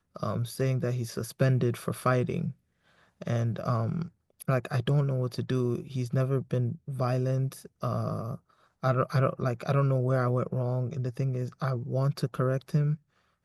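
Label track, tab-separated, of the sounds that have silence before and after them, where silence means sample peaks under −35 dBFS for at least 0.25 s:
3.220000	4.060000	sound
4.420000	8.350000	sound
8.830000	12.950000	sound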